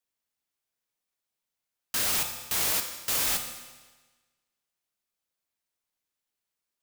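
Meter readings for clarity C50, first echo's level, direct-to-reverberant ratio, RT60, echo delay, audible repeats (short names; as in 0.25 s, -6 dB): 7.5 dB, none, 4.5 dB, 1.3 s, none, none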